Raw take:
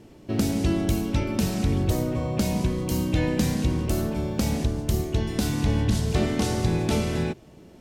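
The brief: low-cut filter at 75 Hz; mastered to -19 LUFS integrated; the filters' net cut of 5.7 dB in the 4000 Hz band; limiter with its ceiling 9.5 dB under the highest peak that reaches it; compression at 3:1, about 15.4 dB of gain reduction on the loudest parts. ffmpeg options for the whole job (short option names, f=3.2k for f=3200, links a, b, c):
-af "highpass=75,equalizer=f=4k:t=o:g=-7.5,acompressor=threshold=-42dB:ratio=3,volume=24.5dB,alimiter=limit=-10dB:level=0:latency=1"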